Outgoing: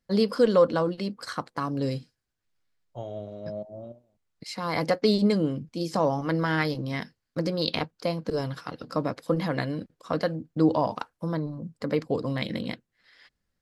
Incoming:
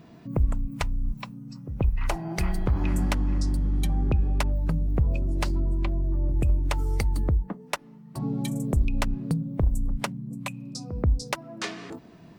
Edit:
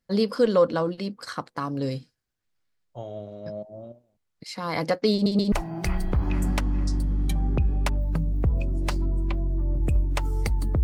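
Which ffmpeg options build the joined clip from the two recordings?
-filter_complex "[0:a]apad=whole_dur=10.83,atrim=end=10.83,asplit=3[s0][s1][s2];[s0]atrim=end=5.262[s3];[s1]atrim=start=5.128:end=5.262[s4];[s2]atrim=start=5.128:end=5.262[s5];[1:a]atrim=start=2.058:end=7.37[s6];[s3][s4]acrossfade=d=0.004:c1=hsin:c2=hsin[s7];[s7][s5]acrossfade=d=0.004:c1=hsin:c2=hsin[s8];[s8][s6]acrossfade=d=0.004:c1=hsin:c2=hsin"

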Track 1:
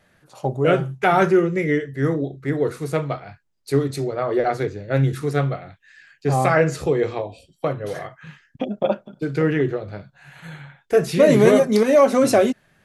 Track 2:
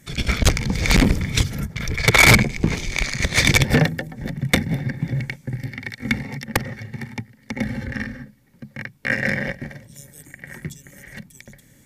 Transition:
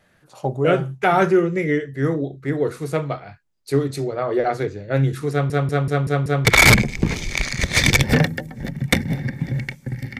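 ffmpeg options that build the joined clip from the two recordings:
-filter_complex "[0:a]apad=whole_dur=10.19,atrim=end=10.19,asplit=6[s0][s1][s2][s3][s4][s5];[s0]atrim=end=5.502[s6];[s1]atrim=start=5.308:end=5.502[s7];[s2]atrim=start=5.308:end=5.502[s8];[s3]atrim=start=5.308:end=5.502[s9];[s4]atrim=start=5.308:end=5.502[s10];[s5]atrim=start=5.308:end=5.502[s11];[1:a]atrim=start=2.058:end=5.8[s12];[s6][s7]acrossfade=d=0.004:c1=hsin:c2=hsin[s13];[s13][s8]acrossfade=d=0.004:c1=hsin:c2=hsin[s14];[s14][s9]acrossfade=d=0.004:c1=hsin:c2=hsin[s15];[s15][s10]acrossfade=d=0.004:c1=hsin:c2=hsin[s16];[s16][s11]acrossfade=d=0.004:c1=hsin:c2=hsin[s17];[s17][s12]acrossfade=d=0.004:c1=hsin:c2=hsin"

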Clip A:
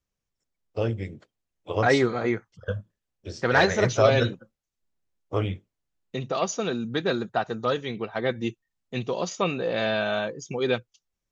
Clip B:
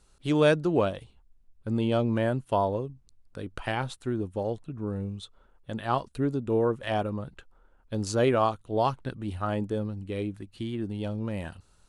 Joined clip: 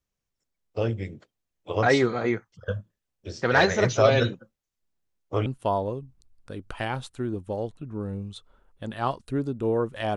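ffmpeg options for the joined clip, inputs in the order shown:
-filter_complex "[0:a]apad=whole_dur=10.16,atrim=end=10.16,atrim=end=5.462[s0];[1:a]atrim=start=2.328:end=7.03[s1];[s0][s1]acrossfade=d=0.004:c1=hsin:c2=hsin"

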